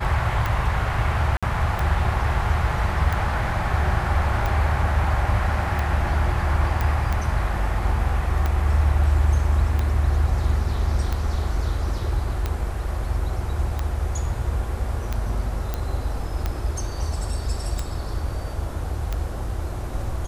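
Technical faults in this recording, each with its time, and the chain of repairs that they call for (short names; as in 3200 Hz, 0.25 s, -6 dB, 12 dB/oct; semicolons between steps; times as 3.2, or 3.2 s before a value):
tick 45 rpm
1.37–1.43 gap 56 ms
6.81 pop
15.74 pop -12 dBFS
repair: de-click; interpolate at 1.37, 56 ms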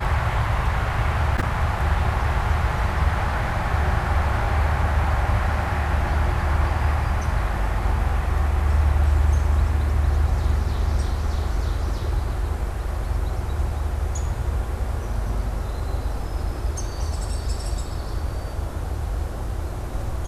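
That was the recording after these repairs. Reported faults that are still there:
none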